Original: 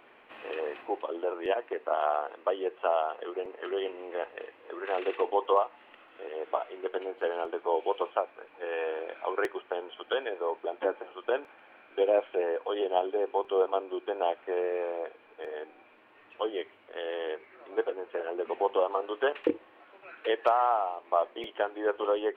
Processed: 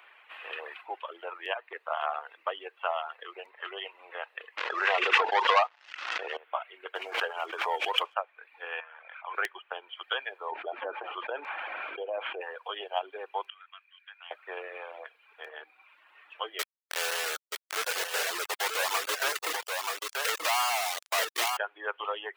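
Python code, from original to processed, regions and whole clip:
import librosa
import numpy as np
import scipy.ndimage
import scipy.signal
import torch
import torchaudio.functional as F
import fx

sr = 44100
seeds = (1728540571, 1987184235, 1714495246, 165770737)

y = fx.chain(x, sr, fx.leveller(passes=3),
    fx.air_absorb(metres=150.0),
    fx.pre_swell(db_per_s=54.0), at=(4.57, 6.37))
y = fx.chain(y, sr, fx.leveller(passes=1),
    fx.pre_swell(db_per_s=49.0), at=(6.95, 8.14))
y = fx.chain(y, sr, fx.highpass(hz=960.0, slope=12),
    fx.air_absorb(metres=470.0),
    fx.sustainer(db_per_s=26.0), at=(8.8, 9.35))
y = fx.chain(y, sr, fx.lowpass(hz=2200.0, slope=12),
    fx.peak_eq(hz=1700.0, db=-8.5, octaves=2.0),
    fx.env_flatten(amount_pct=70), at=(10.52, 12.41))
y = fx.chain(y, sr, fx.cheby1_highpass(hz=1800.0, order=3),
    fx.high_shelf(hz=2500.0, db=-10.5), at=(13.5, 14.31))
y = fx.chain(y, sr, fx.lowpass(hz=2100.0, slope=6),
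    fx.quant_companded(bits=2),
    fx.echo_single(ms=931, db=-3.5), at=(16.59, 21.57))
y = scipy.signal.sosfilt(scipy.signal.butter(2, 1200.0, 'highpass', fs=sr, output='sos'), y)
y = fx.dereverb_blind(y, sr, rt60_s=0.76)
y = y * 10.0 ** (5.5 / 20.0)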